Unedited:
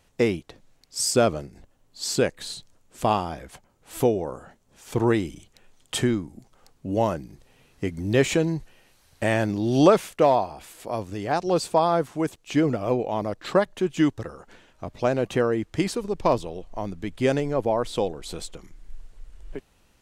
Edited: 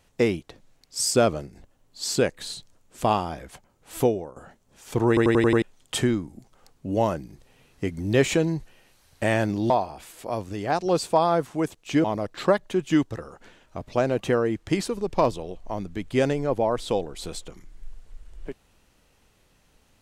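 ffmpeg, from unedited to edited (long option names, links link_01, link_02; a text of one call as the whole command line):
ffmpeg -i in.wav -filter_complex "[0:a]asplit=10[link_01][link_02][link_03][link_04][link_05][link_06][link_07][link_08][link_09][link_10];[link_01]atrim=end=4.36,asetpts=PTS-STARTPTS,afade=type=out:start_time=4.05:duration=0.31:silence=0.158489[link_11];[link_02]atrim=start=4.36:end=5.172,asetpts=PTS-STARTPTS,afade=type=in:duration=0.004:curve=hsin:silence=0.158489[link_12];[link_03]atrim=start=5.078:end=5.172[link_13];[link_04]atrim=start=5.078:end=5.172[link_14];[link_05]atrim=start=5.078:end=5.172[link_15];[link_06]atrim=start=5.078:end=5.172[link_16];[link_07]atrim=start=5.078:end=5.172[link_17];[link_08]atrim=start=5.618:end=9.702[link_18];[link_09]atrim=start=10.308:end=12.652[link_19];[link_10]atrim=start=13.108[link_20];[link_11][link_12]concat=n=2:v=0:a=1[link_21];[link_21][link_13]acrossfade=duration=0.004:curve1=hsin:curve2=hsin[link_22];[link_22][link_14]acrossfade=duration=0.004:curve1=hsin:curve2=hsin[link_23];[link_23][link_15]acrossfade=duration=0.004:curve1=hsin:curve2=hsin[link_24];[link_24][link_16]acrossfade=duration=0.004:curve1=hsin:curve2=hsin[link_25];[link_25][link_17]acrossfade=duration=0.004:curve1=hsin:curve2=hsin[link_26];[link_26][link_18]acrossfade=duration=0.004:curve1=hsin:curve2=hsin[link_27];[link_27][link_19]acrossfade=duration=0.004:curve1=hsin:curve2=hsin[link_28];[link_28][link_20]acrossfade=duration=0.004:curve1=hsin:curve2=hsin" out.wav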